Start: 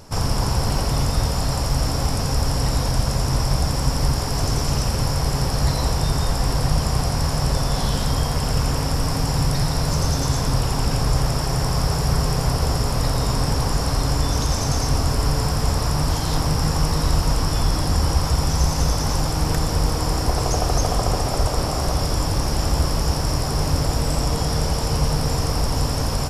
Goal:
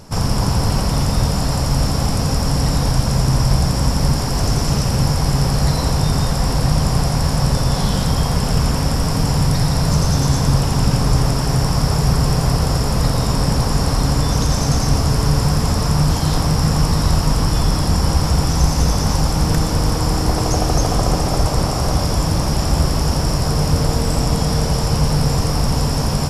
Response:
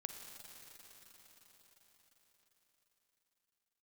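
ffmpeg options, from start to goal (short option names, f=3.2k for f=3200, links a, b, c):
-filter_complex "[0:a]asplit=2[a][b];[b]equalizer=f=180:w=1.3:g=9.5[c];[1:a]atrim=start_sample=2205,asetrate=25578,aresample=44100[d];[c][d]afir=irnorm=-1:irlink=0,volume=-0.5dB[e];[a][e]amix=inputs=2:normalize=0,volume=-3dB"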